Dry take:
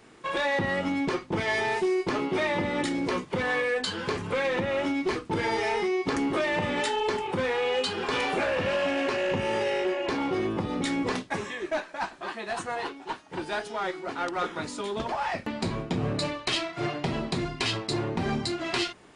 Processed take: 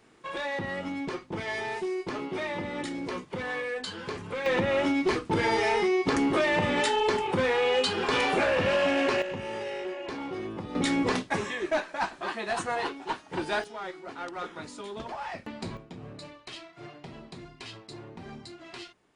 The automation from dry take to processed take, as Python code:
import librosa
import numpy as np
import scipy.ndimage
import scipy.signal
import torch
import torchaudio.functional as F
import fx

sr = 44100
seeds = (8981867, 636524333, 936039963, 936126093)

y = fx.gain(x, sr, db=fx.steps((0.0, -6.0), (4.46, 2.0), (9.22, -7.5), (10.75, 2.0), (13.64, -7.0), (15.77, -15.0)))